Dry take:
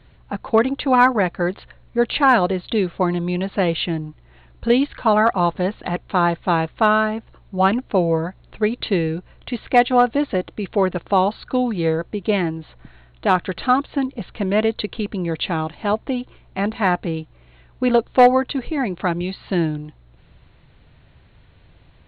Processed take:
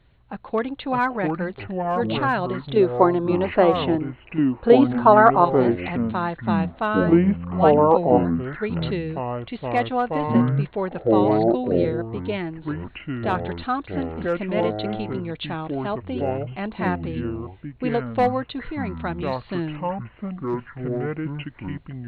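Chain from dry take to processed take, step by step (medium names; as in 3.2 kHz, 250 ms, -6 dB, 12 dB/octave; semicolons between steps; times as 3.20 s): 2.76–5.45 s: high-order bell 640 Hz +11.5 dB 2.9 oct; ever faster or slower copies 475 ms, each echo -6 st, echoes 2; trim -7.5 dB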